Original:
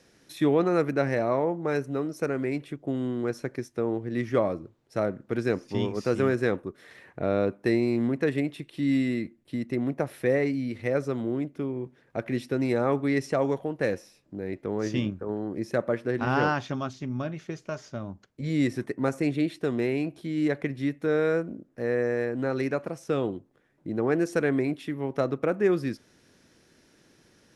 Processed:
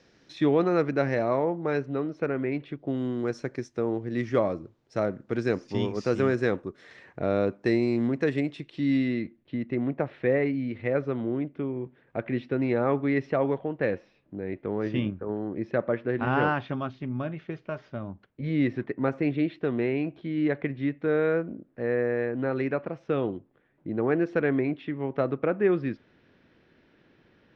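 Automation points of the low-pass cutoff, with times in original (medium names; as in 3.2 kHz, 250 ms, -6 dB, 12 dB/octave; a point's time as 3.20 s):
low-pass 24 dB/octave
1.41 s 5.5 kHz
2.44 s 3.2 kHz
3.16 s 6.9 kHz
8.46 s 6.9 kHz
9.59 s 3.3 kHz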